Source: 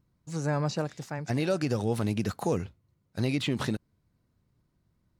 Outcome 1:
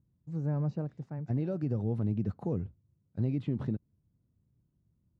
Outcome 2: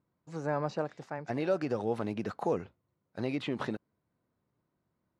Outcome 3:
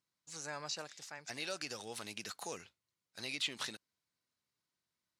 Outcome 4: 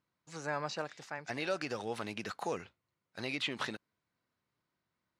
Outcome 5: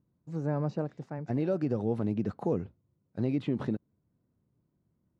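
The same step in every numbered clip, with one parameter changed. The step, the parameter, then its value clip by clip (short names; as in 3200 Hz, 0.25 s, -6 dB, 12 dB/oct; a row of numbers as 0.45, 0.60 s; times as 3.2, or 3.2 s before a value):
band-pass, frequency: 110, 730, 5500, 2000, 280 Hz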